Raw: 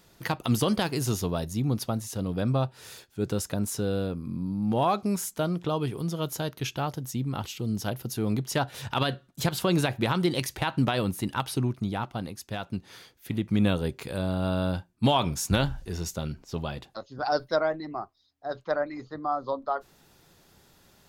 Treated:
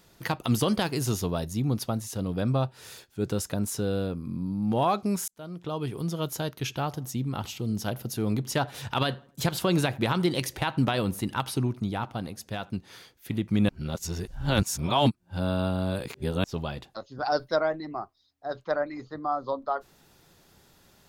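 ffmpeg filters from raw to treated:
-filter_complex "[0:a]asettb=1/sr,asplit=3[s0][s1][s2];[s0]atrim=end=6.524[s3];[s1]atrim=start=6.52:end=12.7,asetpts=PTS-STARTPTS,afade=t=in:d=0.004:c=qsin,afade=t=out:st=6.176:d=0.004:c=qsin,asplit=2[s4][s5];[s5]adelay=84,lowpass=f=2000:p=1,volume=0.0841,asplit=2[s6][s7];[s7]adelay=84,lowpass=f=2000:p=1,volume=0.42,asplit=2[s8][s9];[s9]adelay=84,lowpass=f=2000:p=1,volume=0.42[s10];[s4][s6][s8][s10]amix=inputs=4:normalize=0,atrim=end_sample=272538[s11];[s2]atrim=start=12.696[s12];[s3][s11]acrossfade=d=0.004:c1=hsin:c2=qsin[s13];[s13][s12]acrossfade=d=0.004:c1=qsin:c2=hsin,asplit=4[s14][s15][s16][s17];[s14]atrim=end=5.28,asetpts=PTS-STARTPTS,afade=t=out:st=5.276:d=0.004:c=hsin[s18];[s15]atrim=start=5.28:end=13.692,asetpts=PTS-STARTPTS,afade=t=in:d=0.74[s19];[s16]atrim=start=13.688:end=16.442,asetpts=PTS-STARTPTS,areverse[s20];[s17]atrim=start=16.438[s21];[s18][s19]concat=n=2:v=0:a=1[s22];[s22][s20]acrossfade=d=0.004:c1=hsin:c2=hsin[s23];[s23][s21]acrossfade=d=0.004:c1=hsin:c2=hsin"

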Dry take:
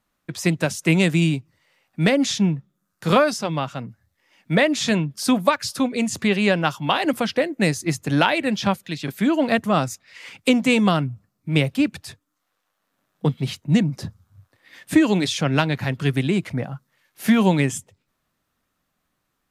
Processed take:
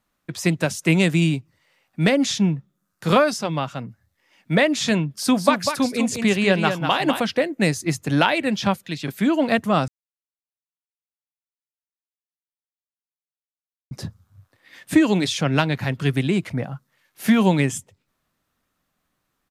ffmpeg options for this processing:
-filter_complex "[0:a]asplit=3[s0][s1][s2];[s0]afade=t=out:st=5.31:d=0.02[s3];[s1]aecho=1:1:197:0.473,afade=t=in:st=5.31:d=0.02,afade=t=out:st=7.19:d=0.02[s4];[s2]afade=t=in:st=7.19:d=0.02[s5];[s3][s4][s5]amix=inputs=3:normalize=0,asplit=3[s6][s7][s8];[s6]atrim=end=9.88,asetpts=PTS-STARTPTS,afade=t=out:st=9.876:d=0.004:c=hsin[s9];[s7]atrim=start=9.88:end=13.91,asetpts=PTS-STARTPTS,volume=0[s10];[s8]atrim=start=13.91,asetpts=PTS-STARTPTS,afade=t=in:d=0.004:c=hsin[s11];[s9][s10][s11]concat=n=3:v=0:a=1"

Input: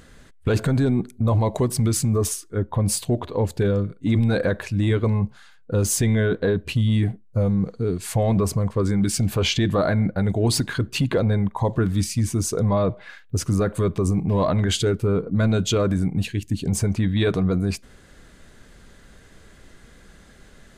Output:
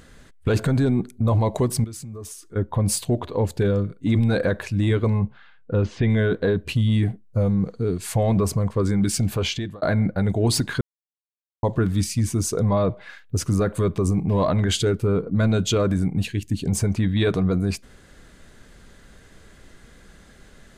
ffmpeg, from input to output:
-filter_complex "[0:a]asettb=1/sr,asplit=3[s0][s1][s2];[s0]atrim=end=1.844[s3];[s1]atrim=start=1.84:end=2.56,asetpts=PTS-STARTPTS,afade=t=in:d=0.004:c=qsin,afade=t=out:st=0.716:d=0.004:c=qsin,acompressor=threshold=0.0126:ratio=3:attack=3.2:release=140:knee=1:detection=peak[s4];[s2]atrim=start=2.556[s5];[s3][s4]acrossfade=d=0.004:c1=hsin:c2=qsin[s6];[s6][s5]acrossfade=d=0.004:c1=qsin:c2=hsin,asettb=1/sr,asplit=3[s7][s8][s9];[s7]atrim=end=5.224[s10];[s8]atrim=start=5.22:end=6.1,asetpts=PTS-STARTPTS,afade=t=in:d=0.004:c=qsin,afade=t=out:st=0.876:d=0.004:c=qsin,lowpass=f=3300:w=0.5412,lowpass=f=3300:w=1.3066[s11];[s9]atrim=start=6.096[s12];[s10][s11]acrossfade=d=0.004:c1=hsin:c2=qsin[s13];[s13][s12]acrossfade=d=0.004:c1=qsin:c2=hsin,asplit=4[s14][s15][s16][s17];[s14]atrim=end=9.82,asetpts=PTS-STARTPTS,afade=t=out:st=9.07:d=0.75:c=qsin[s18];[s15]atrim=start=9.82:end=10.81,asetpts=PTS-STARTPTS,afade=t=in:d=0.004:c=hsin,afade=t=out:st=0.986:d=0.004:c=hsin[s19];[s16]atrim=start=10.81:end=11.63,asetpts=PTS-STARTPTS,volume=0[s20];[s17]atrim=start=11.63,asetpts=PTS-STARTPTS,afade=t=in:d=0.004:c=hsin[s21];[s18][s19][s20][s21]concat=n=4:v=0:a=1"

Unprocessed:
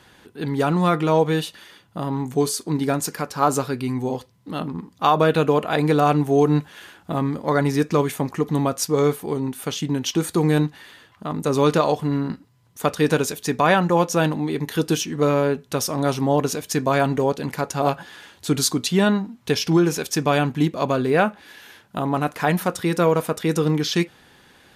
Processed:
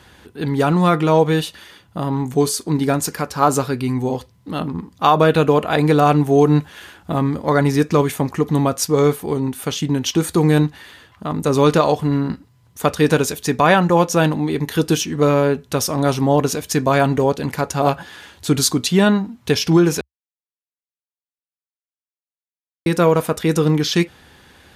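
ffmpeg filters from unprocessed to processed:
-filter_complex "[0:a]asplit=3[s0][s1][s2];[s0]atrim=end=20.01,asetpts=PTS-STARTPTS,afade=t=out:st=20.006:d=0.004:c=hsin[s3];[s1]atrim=start=20.01:end=22.86,asetpts=PTS-STARTPTS,volume=0[s4];[s2]atrim=start=22.86,asetpts=PTS-STARTPTS,afade=t=in:d=0.004:c=hsin[s5];[s3][s4][s5]concat=n=3:v=0:a=1,equalizer=f=69:t=o:w=0.79:g=10.5,volume=1.5"

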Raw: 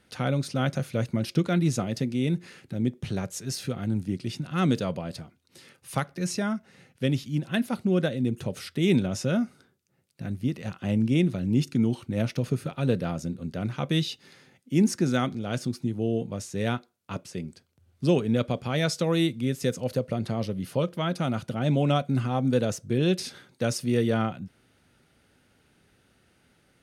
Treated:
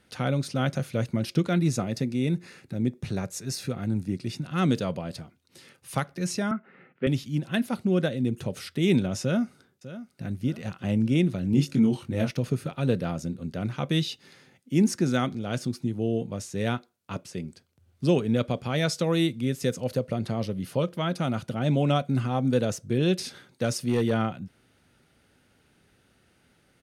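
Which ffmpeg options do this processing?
-filter_complex "[0:a]asettb=1/sr,asplit=3[s0][s1][s2];[s0]atrim=end=1.604[s3];[s1]atrim=start=1.6:end=4.43,asetpts=PTS-STARTPTS,afade=t=in:d=0.004:c=qsin,afade=t=out:st=2.826:d=0.004:c=qsin,bandreject=f=3100:w=7.3[s4];[s2]atrim=start=4.426[s5];[s3][s4]acrossfade=d=0.004:c1=hsin:c2=qsin[s6];[s6][s5]acrossfade=d=0.004:c1=qsin:c2=hsin,asettb=1/sr,asplit=3[s7][s8][s9];[s7]atrim=end=6.514[s10];[s8]atrim=start=6.51:end=7.07,asetpts=PTS-STARTPTS,afade=t=in:d=0.004:c=qsin,afade=t=out:st=0.556:d=0.004:c=qsin,highpass=f=160:w=0.5412,highpass=f=160:w=1.3066,equalizer=f=380:t=q:w=4:g=6,equalizer=f=1300:t=q:w=4:g=9,equalizer=f=2100:t=q:w=4:g=3,lowpass=f=2500:w=0.5412,lowpass=f=2500:w=1.3066[s11];[s9]atrim=start=7.066[s12];[s10][s11]acrossfade=d=0.004:c1=hsin:c2=qsin[s13];[s13][s12]acrossfade=d=0.004:c1=qsin:c2=hsin,asplit=2[s14][s15];[s15]afade=t=in:st=9.21:d=0.01,afade=t=out:st=10.28:d=0.01,aecho=0:1:600|1200|1800|2400:0.188365|0.075346|0.0301384|0.0120554[s16];[s14][s16]amix=inputs=2:normalize=0,asettb=1/sr,asplit=3[s17][s18][s19];[s17]atrim=end=11.514[s20];[s18]atrim=start=11.51:end=12.31,asetpts=PTS-STARTPTS,afade=t=in:d=0.004:c=qsin,afade=t=out:st=0.796:d=0.004:c=qsin,asplit=2[s21][s22];[s22]adelay=22,volume=0.631[s23];[s21][s23]amix=inputs=2:normalize=0,atrim=end_sample=35280[s24];[s19]atrim=start=12.306[s25];[s20][s24]acrossfade=d=0.004:c1=hsin:c2=qsin[s26];[s26][s25]acrossfade=d=0.004:c1=qsin:c2=hsin,asettb=1/sr,asplit=3[s27][s28][s29];[s27]atrim=end=23.654[s30];[s28]atrim=start=23.65:end=24.11,asetpts=PTS-STARTPTS,afade=t=in:d=0.004:c=qsin,afade=t=out:st=0.456:d=0.004:c=qsin,asoftclip=type=hard:threshold=0.133[s31];[s29]atrim=start=24.106[s32];[s30][s31]acrossfade=d=0.004:c1=hsin:c2=qsin[s33];[s33][s32]acrossfade=d=0.004:c1=qsin:c2=hsin"

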